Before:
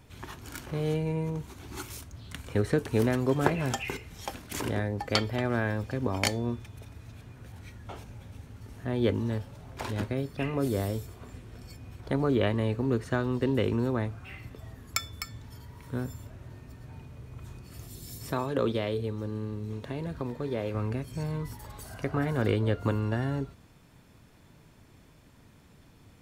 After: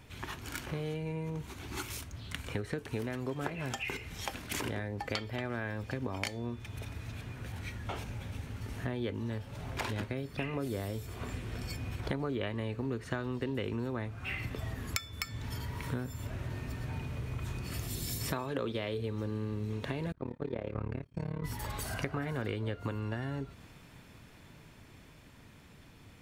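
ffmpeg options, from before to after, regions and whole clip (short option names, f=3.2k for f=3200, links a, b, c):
-filter_complex "[0:a]asettb=1/sr,asplit=3[a][b][c];[a]atrim=end=20.124[d];[b]atrim=start=20.12:end=21.44,asetpts=PTS-STARTPTS,afade=t=in:d=0.004:c=qsin,afade=t=out:st=1.316:d=0.004:c=qsin,agate=range=-33dB:threshold=-31dB:ratio=3:release=100:detection=peak,lowpass=f=1.4k:p=1,tremolo=f=36:d=0.974[e];[c]atrim=start=21.436[f];[d][e]acrossfade=d=0.004:c1=hsin:c2=qsin[g];[g][f]acrossfade=d=0.004:c1=qsin:c2=hsin,dynaudnorm=f=590:g=17:m=11.5dB,equalizer=f=2.4k:t=o:w=1.5:g=5,acompressor=threshold=-33dB:ratio=6"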